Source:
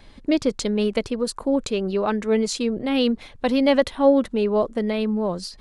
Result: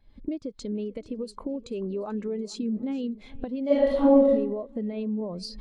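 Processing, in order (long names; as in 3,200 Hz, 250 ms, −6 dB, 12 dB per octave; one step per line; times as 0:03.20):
camcorder AGC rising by 46 dB per second
0:02.53–0:03.07: parametric band 210 Hz +9.5 dB 0.35 octaves
downward compressor 6 to 1, threshold −24 dBFS, peak gain reduction 13 dB
feedback echo with a long and a short gap by turns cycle 729 ms, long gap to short 1.5 to 1, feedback 35%, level −15 dB
0:03.66–0:04.31: thrown reverb, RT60 1 s, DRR −8 dB
every bin expanded away from the loudest bin 1.5 to 1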